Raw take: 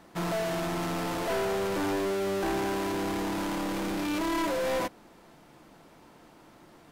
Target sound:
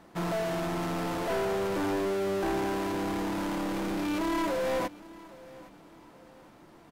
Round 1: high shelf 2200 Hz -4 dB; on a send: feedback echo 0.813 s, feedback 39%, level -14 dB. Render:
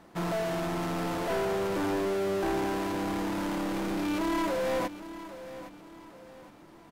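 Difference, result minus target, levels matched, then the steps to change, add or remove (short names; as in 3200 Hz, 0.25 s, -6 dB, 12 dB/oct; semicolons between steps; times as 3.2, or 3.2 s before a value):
echo-to-direct +6.5 dB
change: feedback echo 0.813 s, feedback 39%, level -20.5 dB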